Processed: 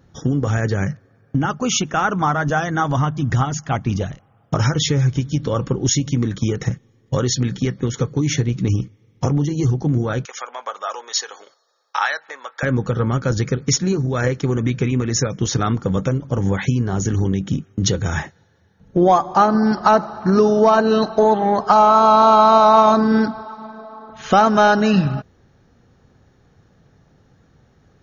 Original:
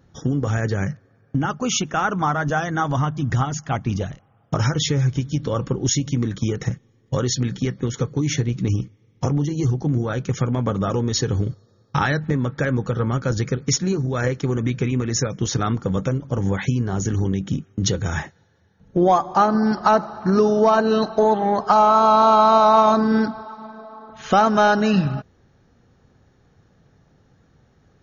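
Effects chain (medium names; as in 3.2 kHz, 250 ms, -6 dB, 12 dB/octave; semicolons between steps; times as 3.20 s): 10.25–12.63 s: high-pass 700 Hz 24 dB/octave; trim +2.5 dB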